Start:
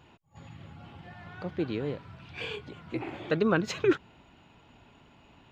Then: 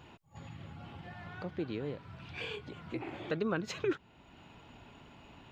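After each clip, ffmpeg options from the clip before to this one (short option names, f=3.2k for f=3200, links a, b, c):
-af "acompressor=threshold=-51dB:ratio=1.5,volume=2.5dB"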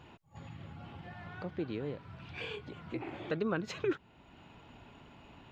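-af "highshelf=f=5k:g=-5.5"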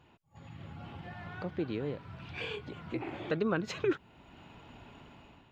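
-af "dynaudnorm=f=200:g=5:m=10dB,volume=-7.5dB"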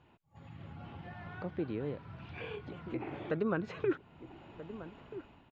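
-filter_complex "[0:a]aemphasis=mode=reproduction:type=50fm,acrossover=split=2500[a][b];[b]acompressor=threshold=-56dB:ratio=4:attack=1:release=60[c];[a][c]amix=inputs=2:normalize=0,asplit=2[d][e];[e]adelay=1283,volume=-13dB,highshelf=f=4k:g=-28.9[f];[d][f]amix=inputs=2:normalize=0,volume=-2dB"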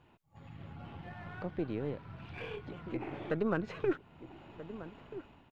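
-af "aeval=exprs='if(lt(val(0),0),0.708*val(0),val(0))':c=same,volume=1.5dB"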